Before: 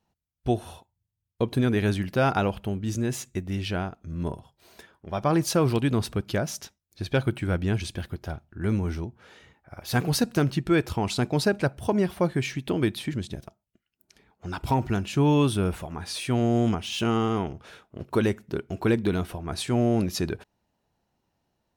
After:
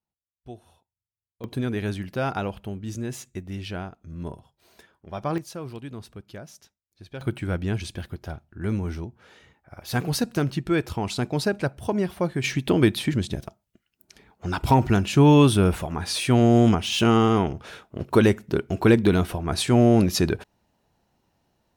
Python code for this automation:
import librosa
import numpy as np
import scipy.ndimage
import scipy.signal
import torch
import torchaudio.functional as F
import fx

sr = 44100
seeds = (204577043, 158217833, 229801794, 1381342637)

y = fx.gain(x, sr, db=fx.steps((0.0, -16.5), (1.44, -4.0), (5.38, -13.5), (7.21, -1.0), (12.44, 6.0)))